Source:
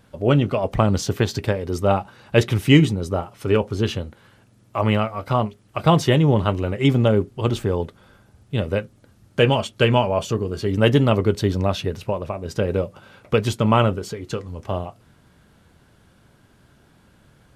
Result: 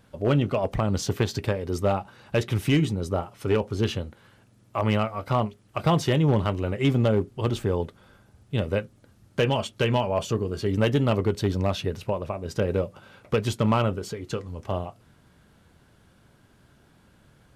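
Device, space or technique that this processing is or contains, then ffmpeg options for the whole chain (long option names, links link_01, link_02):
limiter into clipper: -af "alimiter=limit=-7.5dB:level=0:latency=1:release=243,asoftclip=type=hard:threshold=-11dB,volume=-3dB"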